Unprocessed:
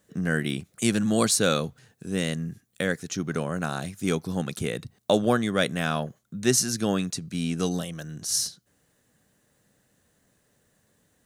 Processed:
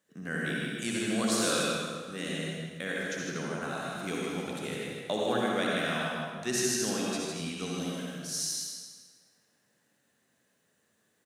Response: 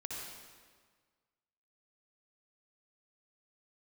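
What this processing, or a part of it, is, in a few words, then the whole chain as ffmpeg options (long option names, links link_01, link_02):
PA in a hall: -filter_complex "[0:a]highpass=170,equalizer=frequency=2300:width_type=o:width=2.5:gain=4.5,aecho=1:1:156:0.562[link_01];[1:a]atrim=start_sample=2205[link_02];[link_01][link_02]afir=irnorm=-1:irlink=0,asettb=1/sr,asplit=3[link_03][link_04][link_05];[link_03]atrim=end=7.104[link_06];[link_04]atrim=start=7.1:end=7.52,asetpts=PTS-STARTPTS,afade=type=in:duration=0.004:curve=qsin,afade=type=out:start_time=0.416:duration=0.004:curve=qsin,asplit=2[link_07][link_08];[link_08]adelay=13,volume=-5dB[link_09];[link_07][link_09]amix=inputs=2:normalize=0,atrim=end_sample=18522[link_10];[link_05]atrim=start=7.516[link_11];[link_06][link_10]acrossfade=duration=0.004:curve1=hsin:curve2=qsin[link_12];[link_12][link_11]acrossfade=duration=0.004:curve1=qsin:curve2=hsin,volume=-7dB"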